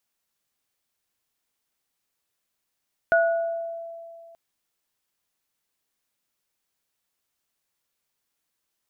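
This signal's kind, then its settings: sine partials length 1.23 s, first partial 669 Hz, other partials 1.46 kHz, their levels -1.5 dB, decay 2.43 s, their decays 0.72 s, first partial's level -16 dB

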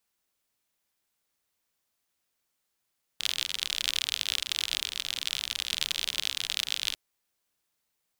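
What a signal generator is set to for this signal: rain from filtered ticks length 3.75 s, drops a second 54, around 3.4 kHz, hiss -23 dB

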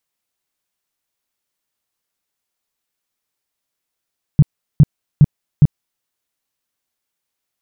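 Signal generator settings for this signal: tone bursts 147 Hz, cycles 5, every 0.41 s, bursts 4, -3 dBFS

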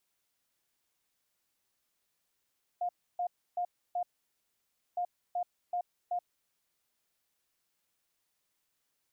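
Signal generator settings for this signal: beep pattern sine 710 Hz, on 0.08 s, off 0.30 s, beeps 4, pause 0.94 s, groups 2, -29.5 dBFS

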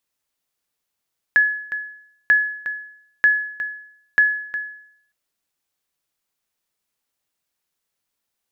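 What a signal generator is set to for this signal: sonar ping 1.7 kHz, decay 0.68 s, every 0.94 s, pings 4, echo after 0.36 s, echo -12.5 dB -8 dBFS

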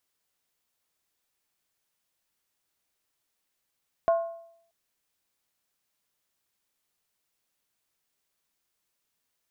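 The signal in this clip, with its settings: skin hit, lowest mode 670 Hz, decay 0.69 s, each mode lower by 11 dB, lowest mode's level -17 dB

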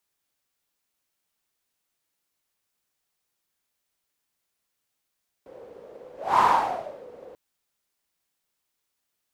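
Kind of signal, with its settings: whoosh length 1.89 s, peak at 0.94 s, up 0.27 s, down 0.71 s, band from 500 Hz, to 1 kHz, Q 7.2, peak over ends 27 dB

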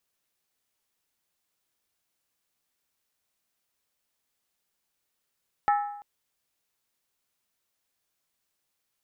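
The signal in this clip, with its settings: skin hit length 0.34 s, lowest mode 821 Hz, decay 0.80 s, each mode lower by 7 dB, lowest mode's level -18 dB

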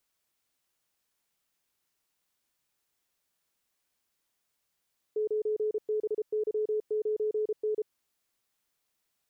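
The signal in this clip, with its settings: Morse "9BY9N" 33 wpm 428 Hz -26 dBFS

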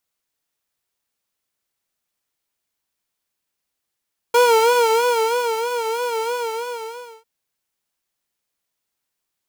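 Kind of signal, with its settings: synth patch with vibrato A#5, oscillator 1 triangle, interval -12 st, detune 27 cents, oscillator 2 level -7.5 dB, sub -1 dB, noise -16.5 dB, filter highpass, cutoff 110 Hz, Q 1, filter envelope 1.5 oct, attack 6.9 ms, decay 1.27 s, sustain -9.5 dB, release 0.95 s, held 1.95 s, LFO 3.1 Hz, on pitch 90 cents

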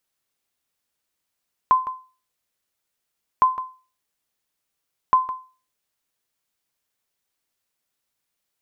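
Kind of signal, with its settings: sonar ping 1.03 kHz, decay 0.35 s, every 1.71 s, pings 3, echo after 0.16 s, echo -14 dB -8 dBFS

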